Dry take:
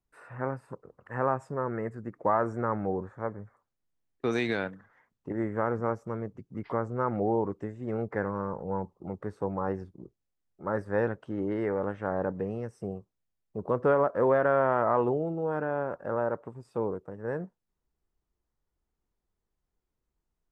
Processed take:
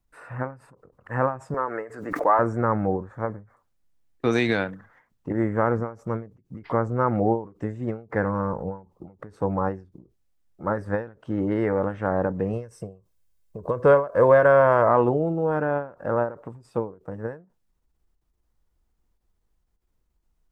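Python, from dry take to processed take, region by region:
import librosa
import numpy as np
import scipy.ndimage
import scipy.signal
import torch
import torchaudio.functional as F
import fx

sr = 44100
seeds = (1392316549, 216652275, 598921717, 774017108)

y = fx.chain(x, sr, fx.highpass(hz=440.0, slope=12),
    fx.comb(ms=6.9, depth=0.32),
    fx.pre_swell(db_per_s=67.0), at=(1.54, 2.39))
y = fx.chain(y, sr, fx.high_shelf(hz=4900.0, db=7.0),
    fx.comb(ms=1.9, depth=0.4), at=(12.53, 14.89))
y = fx.low_shelf(y, sr, hz=67.0, db=9.0)
y = fx.notch(y, sr, hz=400.0, q=12.0)
y = fx.end_taper(y, sr, db_per_s=160.0)
y = F.gain(torch.from_numpy(y), 6.5).numpy()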